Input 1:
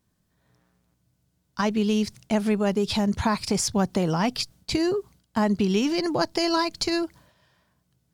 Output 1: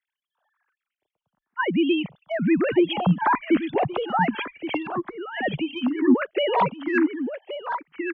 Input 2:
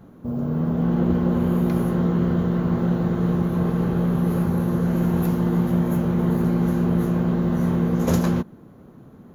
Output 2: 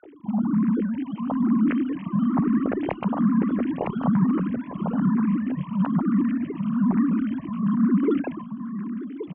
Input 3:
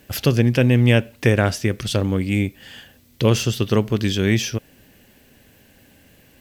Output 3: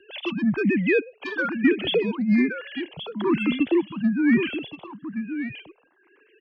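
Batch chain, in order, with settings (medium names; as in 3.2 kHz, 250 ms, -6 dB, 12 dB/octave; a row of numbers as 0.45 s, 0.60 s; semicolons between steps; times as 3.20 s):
formants replaced by sine waves; bass shelf 270 Hz -2.5 dB; gain riding within 4 dB 0.5 s; frequency shift -51 Hz; saturation -9.5 dBFS; on a send: delay 1124 ms -9.5 dB; on the sum: barber-pole phaser +1.1 Hz; normalise loudness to -24 LUFS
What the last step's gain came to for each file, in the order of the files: +6.0 dB, +2.0 dB, +0.5 dB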